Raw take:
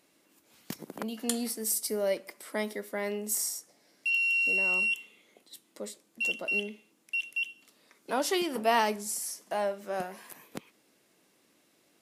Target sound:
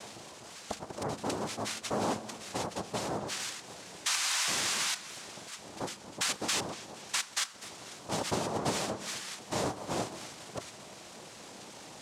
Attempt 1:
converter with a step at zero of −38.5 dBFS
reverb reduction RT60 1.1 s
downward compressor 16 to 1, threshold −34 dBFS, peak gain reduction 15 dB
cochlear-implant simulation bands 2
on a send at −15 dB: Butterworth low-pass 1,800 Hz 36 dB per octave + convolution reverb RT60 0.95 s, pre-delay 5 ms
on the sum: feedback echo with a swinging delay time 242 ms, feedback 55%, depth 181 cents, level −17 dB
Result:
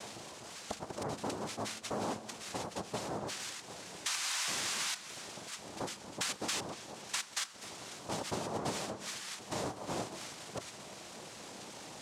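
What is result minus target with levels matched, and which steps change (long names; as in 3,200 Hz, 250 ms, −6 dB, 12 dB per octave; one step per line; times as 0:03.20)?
downward compressor: peak gain reduction +5.5 dB
change: downward compressor 16 to 1, threshold −28 dBFS, peak gain reduction 9 dB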